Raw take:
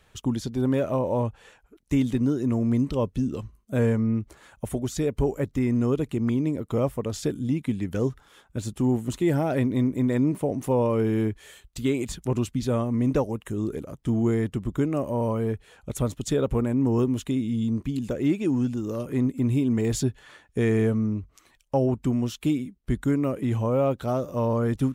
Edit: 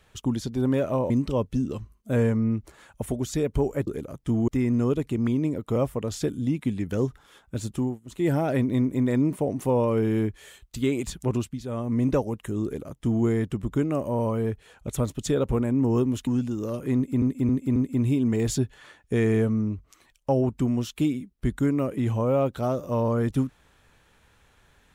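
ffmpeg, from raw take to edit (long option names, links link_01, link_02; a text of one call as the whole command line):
ffmpeg -i in.wav -filter_complex "[0:a]asplit=12[link_01][link_02][link_03][link_04][link_05][link_06][link_07][link_08][link_09][link_10][link_11][link_12];[link_01]atrim=end=1.102[link_13];[link_02]atrim=start=2.728:end=5.502[link_14];[link_03]atrim=start=13.658:end=14.272[link_15];[link_04]atrim=start=5.498:end=9.02,asetpts=PTS-STARTPTS,afade=type=out:start_time=3.272:duration=0.25:silence=0.0668344[link_16];[link_05]atrim=start=9.02:end=9.06,asetpts=PTS-STARTPTS,volume=-23.5dB[link_17];[link_06]atrim=start=9.06:end=12.63,asetpts=PTS-STARTPTS,afade=type=in:duration=0.25:silence=0.0668344,afade=type=out:start_time=3.3:duration=0.27:silence=0.354813[link_18];[link_07]atrim=start=12.63:end=12.7,asetpts=PTS-STARTPTS,volume=-9dB[link_19];[link_08]atrim=start=12.7:end=17.292,asetpts=PTS-STARTPTS,afade=type=in:duration=0.27:silence=0.354813[link_20];[link_09]atrim=start=18.528:end=19.482[link_21];[link_10]atrim=start=19.208:end=19.482[link_22];[link_11]atrim=start=19.208:end=19.482[link_23];[link_12]atrim=start=19.208[link_24];[link_13][link_14]acrossfade=duration=0.004:curve1=hsin:curve2=hsin[link_25];[link_25][link_15]acrossfade=duration=0.004:curve1=hsin:curve2=hsin[link_26];[link_16][link_17][link_18][link_19][link_20]concat=n=5:v=0:a=1[link_27];[link_26][link_27]acrossfade=duration=0.004:curve1=hsin:curve2=hsin[link_28];[link_28][link_21]acrossfade=duration=0.004:curve1=hsin:curve2=hsin[link_29];[link_29][link_22]acrossfade=duration=0.004:curve1=hsin:curve2=hsin[link_30];[link_30][link_23]acrossfade=duration=0.004:curve1=hsin:curve2=hsin[link_31];[link_31][link_24]acrossfade=duration=0.004:curve1=hsin:curve2=hsin" out.wav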